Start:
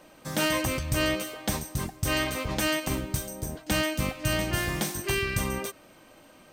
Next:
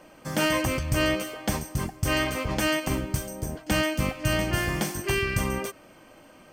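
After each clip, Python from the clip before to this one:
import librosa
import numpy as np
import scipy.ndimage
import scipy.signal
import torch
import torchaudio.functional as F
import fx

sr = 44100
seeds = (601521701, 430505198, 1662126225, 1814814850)

y = fx.high_shelf(x, sr, hz=5300.0, db=-5.0)
y = fx.notch(y, sr, hz=3800.0, q=6.3)
y = F.gain(torch.from_numpy(y), 2.5).numpy()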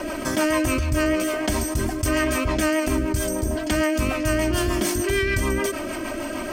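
y = x + 0.88 * np.pad(x, (int(3.1 * sr / 1000.0), 0))[:len(x)]
y = fx.rotary(y, sr, hz=6.7)
y = fx.env_flatten(y, sr, amount_pct=70)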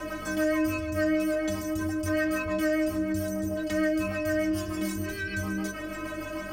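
y = fx.stiff_resonator(x, sr, f0_hz=93.0, decay_s=0.54, stiffness=0.03)
y = fx.add_hum(y, sr, base_hz=50, snr_db=23)
y = fx.band_squash(y, sr, depth_pct=40)
y = F.gain(torch.from_numpy(y), 1.0).numpy()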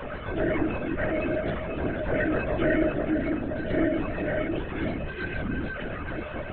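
y = fx.echo_feedback(x, sr, ms=496, feedback_pct=53, wet_db=-7.5)
y = fx.lpc_vocoder(y, sr, seeds[0], excitation='whisper', order=16)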